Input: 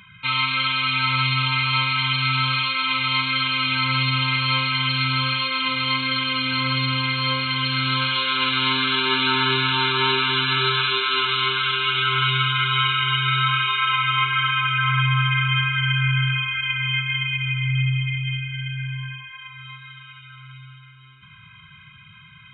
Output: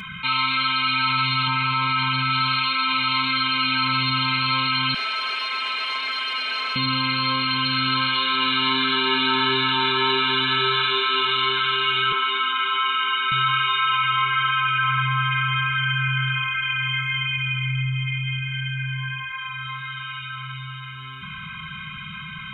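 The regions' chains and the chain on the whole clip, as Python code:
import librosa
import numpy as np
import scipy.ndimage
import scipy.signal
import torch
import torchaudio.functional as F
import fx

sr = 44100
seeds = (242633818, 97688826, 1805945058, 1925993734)

y = fx.chain(x, sr, fx.lowpass(hz=1800.0, slope=6),
    fx.env_flatten(amount_pct=100), at=(1.47, 2.3))
y = fx.chain(y, sr, fx.differentiator(),
    fx.leveller(passes=3),
    fx.bandpass_edges(low_hz=430.0, high_hz=2200.0), at=(4.94, 6.76))
y = fx.chain(y, sr, fx.cheby_ripple_highpass(hz=200.0, ripple_db=3),
    fx.air_absorb(metres=95.0), at=(12.12, 13.32))
y = fx.notch(y, sr, hz=1400.0, q=19.0)
y = y + 0.69 * np.pad(y, (int(4.6 * sr / 1000.0), 0))[:len(y)]
y = fx.env_flatten(y, sr, amount_pct=50)
y = F.gain(torch.from_numpy(y), -3.5).numpy()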